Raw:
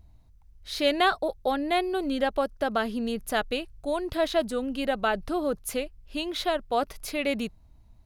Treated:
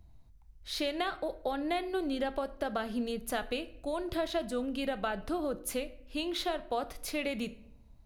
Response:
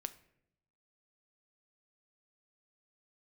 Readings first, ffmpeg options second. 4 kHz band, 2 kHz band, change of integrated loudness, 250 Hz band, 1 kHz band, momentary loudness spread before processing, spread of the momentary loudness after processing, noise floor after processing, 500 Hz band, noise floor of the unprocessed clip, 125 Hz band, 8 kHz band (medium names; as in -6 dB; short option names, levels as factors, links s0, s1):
-6.5 dB, -8.0 dB, -6.5 dB, -5.0 dB, -8.0 dB, 7 LU, 5 LU, -57 dBFS, -7.0 dB, -55 dBFS, -3.5 dB, -3.5 dB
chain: -filter_complex "[0:a]acrossover=split=130[s0][s1];[s1]acompressor=threshold=0.0447:ratio=6[s2];[s0][s2]amix=inputs=2:normalize=0[s3];[1:a]atrim=start_sample=2205[s4];[s3][s4]afir=irnorm=-1:irlink=0"